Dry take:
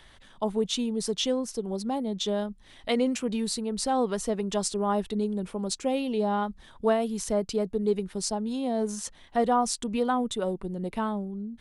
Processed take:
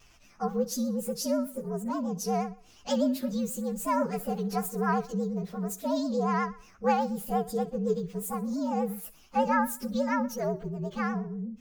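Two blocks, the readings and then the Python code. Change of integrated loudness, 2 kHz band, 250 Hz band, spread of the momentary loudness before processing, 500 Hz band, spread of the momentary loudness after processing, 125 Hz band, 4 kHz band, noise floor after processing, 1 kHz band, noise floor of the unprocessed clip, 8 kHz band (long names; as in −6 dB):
−1.5 dB, +2.5 dB, −1.0 dB, 6 LU, −3.0 dB, 7 LU, +1.5 dB, −10.0 dB, −57 dBFS, 0.0 dB, −54 dBFS, −5.0 dB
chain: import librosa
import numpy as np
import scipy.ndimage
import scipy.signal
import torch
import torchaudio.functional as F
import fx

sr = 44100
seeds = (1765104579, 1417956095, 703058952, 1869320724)

y = fx.partial_stretch(x, sr, pct=119)
y = fx.echo_feedback(y, sr, ms=62, feedback_pct=44, wet_db=-17)
y = fx.vibrato(y, sr, rate_hz=8.3, depth_cents=93.0)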